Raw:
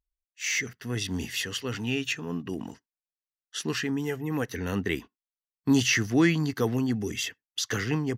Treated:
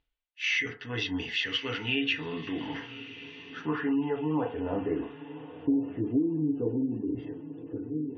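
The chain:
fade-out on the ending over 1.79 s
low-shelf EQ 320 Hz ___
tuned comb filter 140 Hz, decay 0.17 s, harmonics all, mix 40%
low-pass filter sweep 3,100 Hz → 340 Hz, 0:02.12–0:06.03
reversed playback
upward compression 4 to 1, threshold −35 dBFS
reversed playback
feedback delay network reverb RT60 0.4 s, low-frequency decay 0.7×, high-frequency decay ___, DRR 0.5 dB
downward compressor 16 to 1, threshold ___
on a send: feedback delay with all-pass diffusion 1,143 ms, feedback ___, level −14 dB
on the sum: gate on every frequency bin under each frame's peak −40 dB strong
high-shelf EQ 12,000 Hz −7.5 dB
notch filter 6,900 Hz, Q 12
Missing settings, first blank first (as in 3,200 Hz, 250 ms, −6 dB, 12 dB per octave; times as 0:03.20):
−5.5 dB, 0.3×, −23 dBFS, 46%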